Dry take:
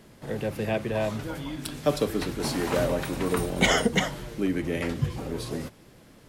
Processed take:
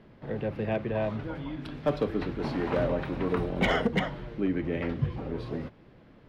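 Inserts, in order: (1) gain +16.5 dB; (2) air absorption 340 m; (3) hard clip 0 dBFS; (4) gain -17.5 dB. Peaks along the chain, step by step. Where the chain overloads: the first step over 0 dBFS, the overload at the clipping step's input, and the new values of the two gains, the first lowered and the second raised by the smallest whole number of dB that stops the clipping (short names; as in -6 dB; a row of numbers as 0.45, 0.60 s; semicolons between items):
+8.0, +6.0, 0.0, -17.5 dBFS; step 1, 6.0 dB; step 1 +10.5 dB, step 4 -11.5 dB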